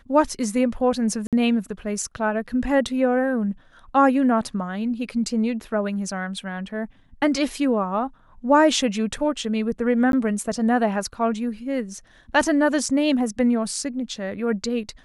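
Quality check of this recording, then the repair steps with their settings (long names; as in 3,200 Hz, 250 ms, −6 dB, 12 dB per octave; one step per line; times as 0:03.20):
0:01.27–0:01.33: drop-out 57 ms
0:10.12–0:10.13: drop-out 12 ms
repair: repair the gap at 0:01.27, 57 ms
repair the gap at 0:10.12, 12 ms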